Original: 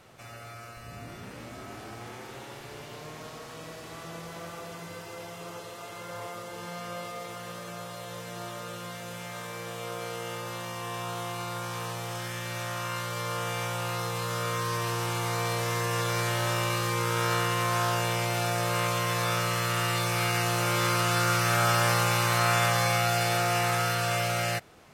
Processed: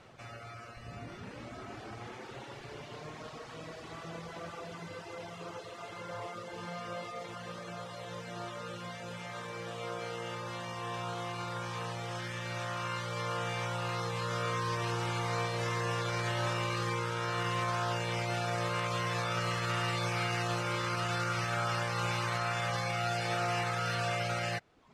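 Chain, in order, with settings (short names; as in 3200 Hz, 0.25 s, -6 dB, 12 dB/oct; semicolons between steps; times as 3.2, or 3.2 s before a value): reverb removal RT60 0.8 s; limiter -23 dBFS, peak gain reduction 8.5 dB; air absorption 77 m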